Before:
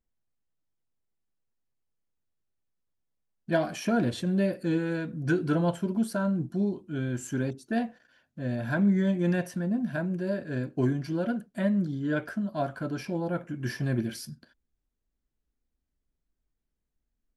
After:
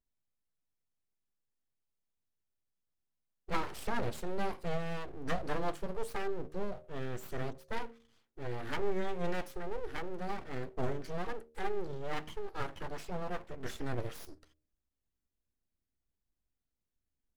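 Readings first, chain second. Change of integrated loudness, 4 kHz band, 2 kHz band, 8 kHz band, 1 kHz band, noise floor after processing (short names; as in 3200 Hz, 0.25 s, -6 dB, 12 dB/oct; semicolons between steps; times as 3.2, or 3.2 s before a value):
-10.5 dB, -4.5 dB, -7.0 dB, -8.0 dB, -1.5 dB, under -85 dBFS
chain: full-wave rectifier; de-hum 76.74 Hz, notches 8; gain -5 dB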